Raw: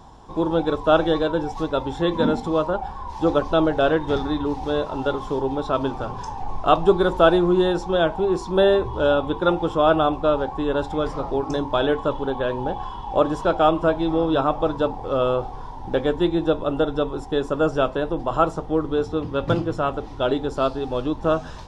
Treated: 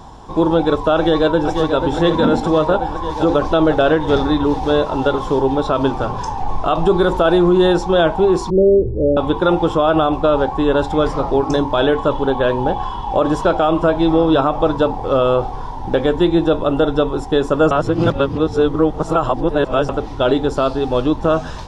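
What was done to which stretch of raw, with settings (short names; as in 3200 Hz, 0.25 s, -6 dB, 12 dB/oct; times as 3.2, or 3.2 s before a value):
0.96–1.85 echo throw 0.49 s, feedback 75%, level -7.5 dB
8.5–9.17 steep low-pass 530 Hz 48 dB/oct
17.71–19.89 reverse
whole clip: limiter -13 dBFS; gain +8 dB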